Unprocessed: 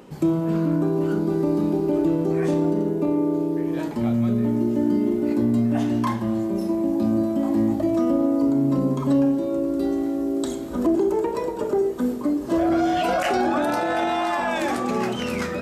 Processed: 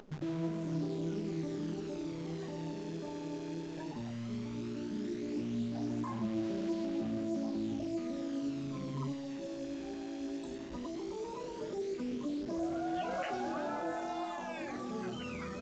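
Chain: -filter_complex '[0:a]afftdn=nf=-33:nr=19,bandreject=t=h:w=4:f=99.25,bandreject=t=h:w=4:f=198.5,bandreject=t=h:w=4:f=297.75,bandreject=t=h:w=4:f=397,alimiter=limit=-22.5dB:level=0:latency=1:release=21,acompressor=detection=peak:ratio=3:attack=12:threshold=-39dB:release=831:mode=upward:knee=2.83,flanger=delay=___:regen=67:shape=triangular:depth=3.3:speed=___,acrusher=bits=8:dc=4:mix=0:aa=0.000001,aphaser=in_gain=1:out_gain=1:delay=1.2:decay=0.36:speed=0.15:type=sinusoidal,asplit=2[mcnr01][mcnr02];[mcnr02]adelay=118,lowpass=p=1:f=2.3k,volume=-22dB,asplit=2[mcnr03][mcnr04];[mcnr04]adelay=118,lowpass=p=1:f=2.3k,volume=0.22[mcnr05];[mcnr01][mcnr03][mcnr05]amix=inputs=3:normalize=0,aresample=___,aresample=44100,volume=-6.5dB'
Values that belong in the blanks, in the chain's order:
4.4, 1.6, 16000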